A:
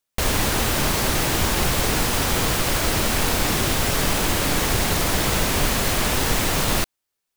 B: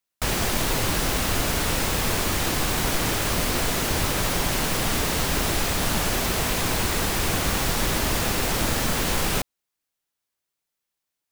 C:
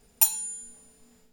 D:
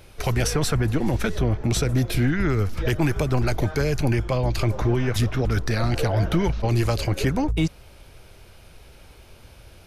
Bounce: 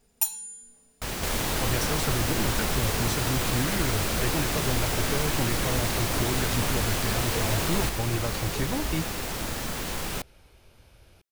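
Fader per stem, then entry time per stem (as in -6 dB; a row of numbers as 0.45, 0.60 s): -8.5, -8.0, -5.0, -8.0 dB; 1.05, 0.80, 0.00, 1.35 s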